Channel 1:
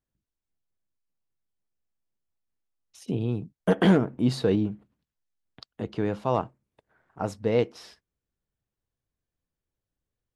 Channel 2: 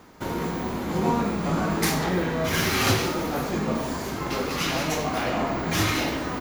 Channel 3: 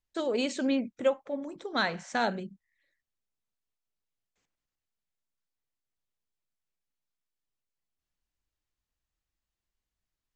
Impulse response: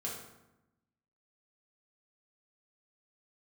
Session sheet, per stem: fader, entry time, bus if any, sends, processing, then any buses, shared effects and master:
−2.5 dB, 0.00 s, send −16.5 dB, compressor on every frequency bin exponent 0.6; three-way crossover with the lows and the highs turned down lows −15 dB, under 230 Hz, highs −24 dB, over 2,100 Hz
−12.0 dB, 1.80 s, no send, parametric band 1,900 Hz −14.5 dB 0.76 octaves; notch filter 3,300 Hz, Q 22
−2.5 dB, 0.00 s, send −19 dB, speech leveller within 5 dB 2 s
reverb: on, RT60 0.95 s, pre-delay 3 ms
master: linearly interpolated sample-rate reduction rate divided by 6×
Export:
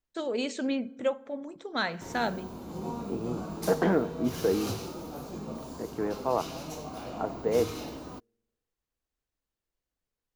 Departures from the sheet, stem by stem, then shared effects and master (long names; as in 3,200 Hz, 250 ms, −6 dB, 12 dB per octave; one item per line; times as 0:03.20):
stem 1: missing compressor on every frequency bin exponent 0.6
master: missing linearly interpolated sample-rate reduction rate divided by 6×